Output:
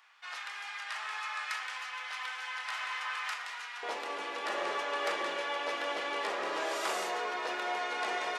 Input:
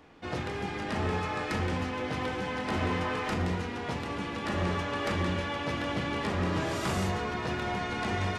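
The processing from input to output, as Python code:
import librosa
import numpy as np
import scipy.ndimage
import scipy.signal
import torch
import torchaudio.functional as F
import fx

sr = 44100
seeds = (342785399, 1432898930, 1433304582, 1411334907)

y = fx.highpass(x, sr, hz=fx.steps((0.0, 1100.0), (3.83, 440.0)), slope=24)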